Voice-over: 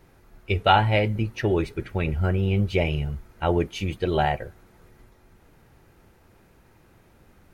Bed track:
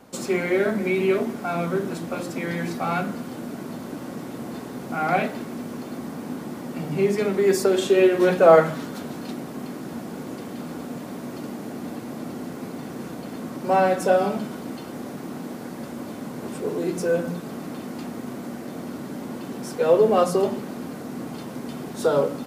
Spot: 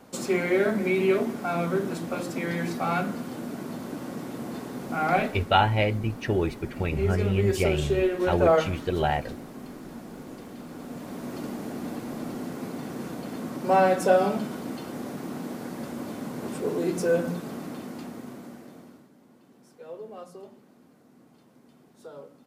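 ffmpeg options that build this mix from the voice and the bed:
-filter_complex "[0:a]adelay=4850,volume=-2.5dB[a];[1:a]volume=5dB,afade=t=out:st=5.17:d=0.36:silence=0.501187,afade=t=in:st=10.7:d=0.69:silence=0.473151,afade=t=out:st=17.29:d=1.81:silence=0.0749894[b];[a][b]amix=inputs=2:normalize=0"

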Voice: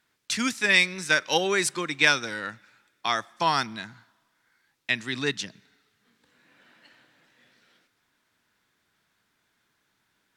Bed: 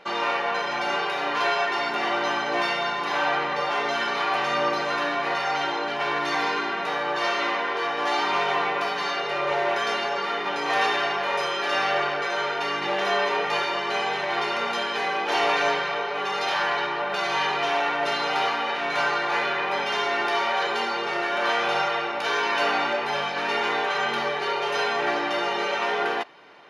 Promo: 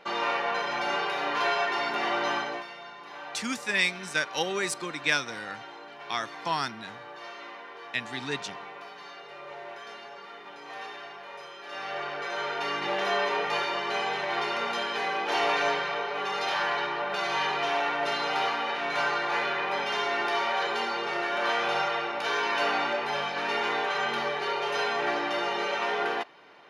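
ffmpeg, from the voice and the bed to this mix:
-filter_complex "[0:a]adelay=3050,volume=-5.5dB[a];[1:a]volume=11dB,afade=t=out:st=2.37:d=0.27:silence=0.188365,afade=t=in:st=11.63:d=1.06:silence=0.199526[b];[a][b]amix=inputs=2:normalize=0"

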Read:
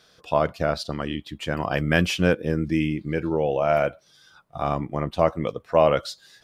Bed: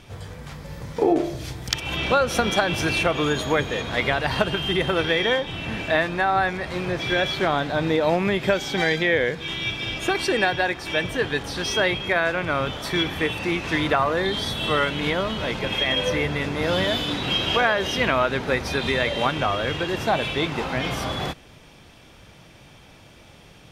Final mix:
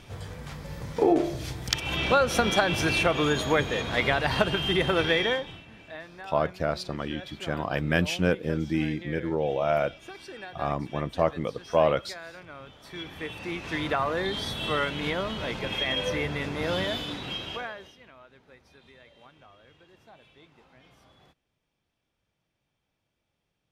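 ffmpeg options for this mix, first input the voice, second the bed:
-filter_complex "[0:a]adelay=6000,volume=-4dB[a];[1:a]volume=13dB,afade=t=out:st=5.14:d=0.51:silence=0.11885,afade=t=in:st=12.78:d=1.32:silence=0.177828,afade=t=out:st=16.72:d=1.24:silence=0.0501187[b];[a][b]amix=inputs=2:normalize=0"

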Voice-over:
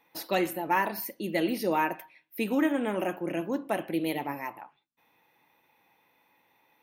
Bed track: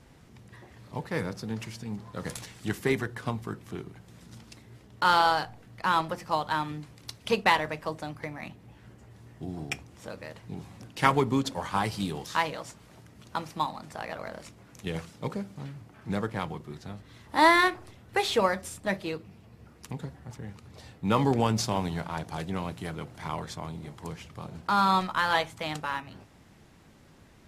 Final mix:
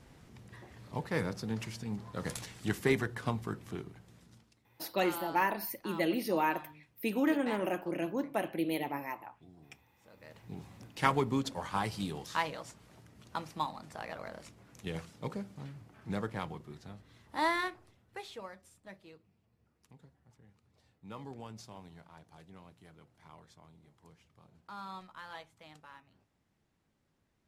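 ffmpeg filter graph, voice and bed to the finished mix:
-filter_complex "[0:a]adelay=4650,volume=-3.5dB[a];[1:a]volume=13dB,afade=t=out:st=3.66:d=0.88:silence=0.11885,afade=t=in:st=10.1:d=0.41:silence=0.177828,afade=t=out:st=16.32:d=2.07:silence=0.158489[b];[a][b]amix=inputs=2:normalize=0"

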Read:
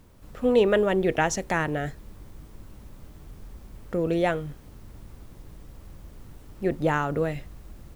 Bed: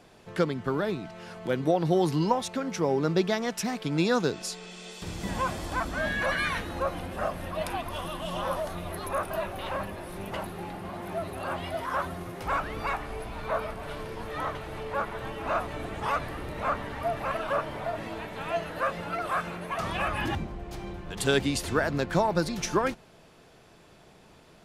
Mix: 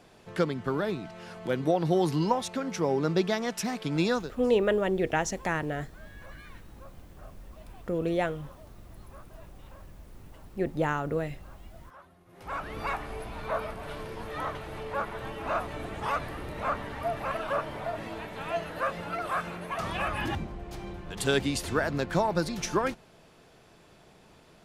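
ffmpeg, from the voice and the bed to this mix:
-filter_complex "[0:a]adelay=3950,volume=-4dB[a];[1:a]volume=20dB,afade=t=out:st=4.09:d=0.22:silence=0.0841395,afade=t=in:st=12.26:d=0.57:silence=0.0891251[b];[a][b]amix=inputs=2:normalize=0"

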